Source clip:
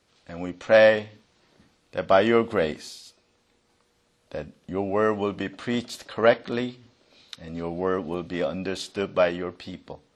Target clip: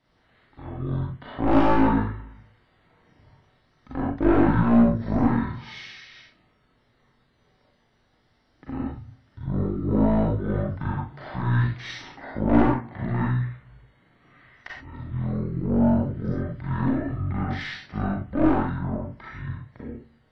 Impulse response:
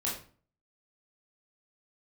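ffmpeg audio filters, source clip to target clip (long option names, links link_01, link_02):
-filter_complex "[0:a]equalizer=frequency=5000:width=7.5:gain=-10,aeval=exprs='(tanh(6.31*val(0)+0.5)-tanh(0.5))/6.31':channel_layout=same[link_01];[1:a]atrim=start_sample=2205,atrim=end_sample=3087[link_02];[link_01][link_02]afir=irnorm=-1:irlink=0,asetrate=22050,aresample=44100"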